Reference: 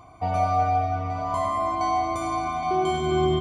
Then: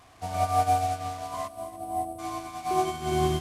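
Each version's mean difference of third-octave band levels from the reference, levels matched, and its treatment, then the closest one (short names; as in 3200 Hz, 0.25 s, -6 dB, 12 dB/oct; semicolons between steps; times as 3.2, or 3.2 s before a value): 7.0 dB: delta modulation 64 kbps, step -28 dBFS; spectral delete 1.48–2.19, 770–7800 Hz; on a send: split-band echo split 710 Hz, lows 0.154 s, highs 0.285 s, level -9.5 dB; on the sum: upward expander 2.5:1, over -33 dBFS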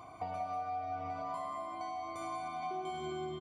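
3.0 dB: HPF 220 Hz 6 dB/oct; notch 6400 Hz, Q 6.5; compressor 16:1, threshold -36 dBFS, peak gain reduction 17.5 dB; echo 0.189 s -9.5 dB; gain -1 dB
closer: second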